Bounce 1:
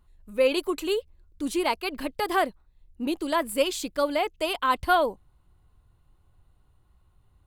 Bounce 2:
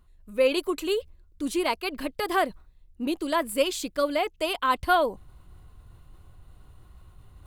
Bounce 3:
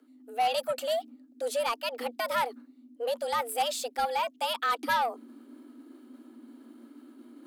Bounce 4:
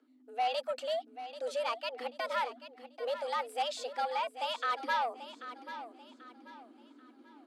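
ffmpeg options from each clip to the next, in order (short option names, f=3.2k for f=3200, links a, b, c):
-af "bandreject=f=860:w=12,areverse,acompressor=mode=upward:threshold=-37dB:ratio=2.5,areverse"
-filter_complex "[0:a]afreqshift=230,acrossover=split=5900[a][b];[a]asoftclip=type=tanh:threshold=-19.5dB[c];[c][b]amix=inputs=2:normalize=0,volume=-1.5dB"
-af "highpass=290,lowpass=5.6k,aecho=1:1:787|1574|2361|3148:0.237|0.083|0.029|0.0102,volume=-4.5dB"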